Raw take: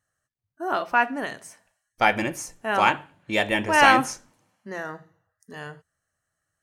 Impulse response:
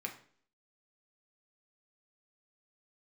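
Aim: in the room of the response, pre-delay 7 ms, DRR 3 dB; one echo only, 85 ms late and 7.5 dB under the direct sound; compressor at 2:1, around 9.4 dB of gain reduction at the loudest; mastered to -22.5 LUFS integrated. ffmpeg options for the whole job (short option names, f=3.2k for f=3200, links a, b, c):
-filter_complex "[0:a]acompressor=threshold=-28dB:ratio=2,aecho=1:1:85:0.422,asplit=2[a][b];[1:a]atrim=start_sample=2205,adelay=7[c];[b][c]afir=irnorm=-1:irlink=0,volume=-3.5dB[d];[a][d]amix=inputs=2:normalize=0,volume=5.5dB"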